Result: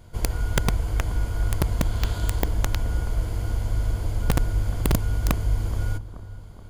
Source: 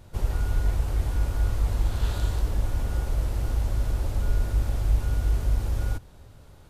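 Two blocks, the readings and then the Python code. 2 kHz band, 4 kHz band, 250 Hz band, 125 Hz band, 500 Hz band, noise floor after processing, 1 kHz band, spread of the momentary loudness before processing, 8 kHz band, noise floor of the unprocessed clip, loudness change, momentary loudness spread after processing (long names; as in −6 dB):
+6.5 dB, +6.5 dB, +7.0 dB, +1.5 dB, +4.5 dB, −40 dBFS, +5.0 dB, 3 LU, +7.5 dB, −49 dBFS, +1.5 dB, 4 LU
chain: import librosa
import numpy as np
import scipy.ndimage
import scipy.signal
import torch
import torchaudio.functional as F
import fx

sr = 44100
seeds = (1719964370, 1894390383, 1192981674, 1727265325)

y = fx.ripple_eq(x, sr, per_octave=1.8, db=7)
y = (np.mod(10.0 ** (13.5 / 20.0) * y + 1.0, 2.0) - 1.0) / 10.0 ** (13.5 / 20.0)
y = fx.echo_bbd(y, sr, ms=427, stages=4096, feedback_pct=60, wet_db=-16.5)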